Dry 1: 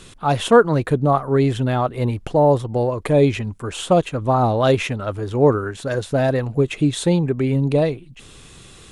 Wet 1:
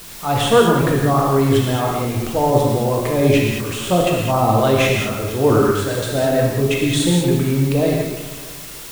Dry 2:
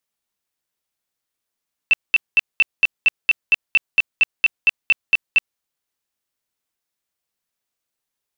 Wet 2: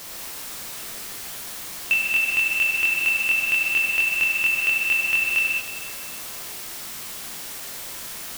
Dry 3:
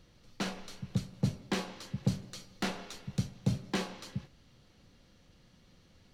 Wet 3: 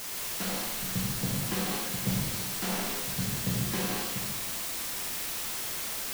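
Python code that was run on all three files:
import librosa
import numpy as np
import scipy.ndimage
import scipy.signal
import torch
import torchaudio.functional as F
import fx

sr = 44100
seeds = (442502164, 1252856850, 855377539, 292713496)

y = fx.transient(x, sr, attack_db=-1, sustain_db=8)
y = fx.quant_dither(y, sr, seeds[0], bits=6, dither='triangular')
y = fx.echo_feedback(y, sr, ms=316, feedback_pct=36, wet_db=-16.0)
y = fx.rev_gated(y, sr, seeds[1], gate_ms=240, shape='flat', drr_db=-2.0)
y = y * 10.0 ** (-3.0 / 20.0)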